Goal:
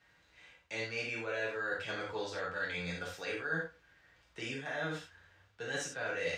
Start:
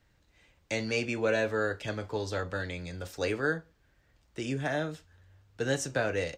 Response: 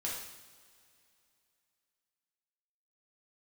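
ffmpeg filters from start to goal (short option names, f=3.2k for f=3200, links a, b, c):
-filter_complex "[0:a]highpass=51,equalizer=f=1.9k:w=0.31:g=12.5,areverse,acompressor=threshold=-30dB:ratio=6,areverse[a];[1:a]atrim=start_sample=2205,atrim=end_sample=4410[b];[a][b]afir=irnorm=-1:irlink=0,volume=-6dB"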